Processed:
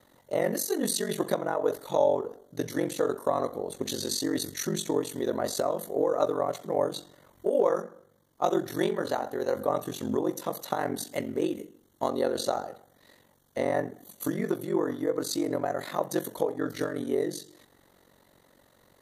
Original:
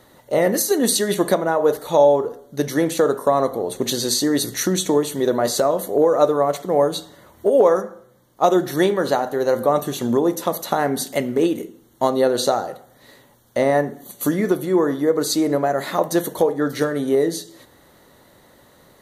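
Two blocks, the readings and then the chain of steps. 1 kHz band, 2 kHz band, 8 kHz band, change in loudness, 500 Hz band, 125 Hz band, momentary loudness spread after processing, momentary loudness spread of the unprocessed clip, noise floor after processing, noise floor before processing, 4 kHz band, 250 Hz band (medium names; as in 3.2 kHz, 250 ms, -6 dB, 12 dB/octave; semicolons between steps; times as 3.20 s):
-10.0 dB, -10.0 dB, -10.0 dB, -10.0 dB, -10.0 dB, -10.0 dB, 7 LU, 7 LU, -63 dBFS, -53 dBFS, -10.0 dB, -10.0 dB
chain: ring modulator 23 Hz; trim -7 dB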